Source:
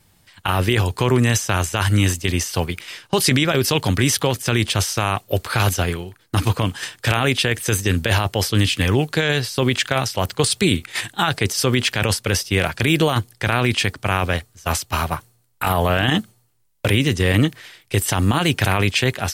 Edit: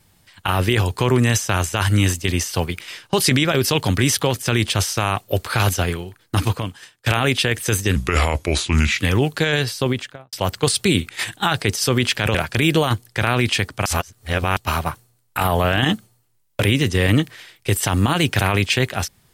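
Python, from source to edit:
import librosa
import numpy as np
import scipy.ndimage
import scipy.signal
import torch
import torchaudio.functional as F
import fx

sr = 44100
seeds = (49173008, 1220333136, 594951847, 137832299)

y = fx.studio_fade_out(x, sr, start_s=9.49, length_s=0.6)
y = fx.edit(y, sr, fx.fade_out_to(start_s=6.44, length_s=0.62, curve='qua', floor_db=-19.5),
    fx.speed_span(start_s=7.96, length_s=0.79, speed=0.77),
    fx.cut(start_s=12.11, length_s=0.49),
    fx.reverse_span(start_s=14.11, length_s=0.71), tone=tone)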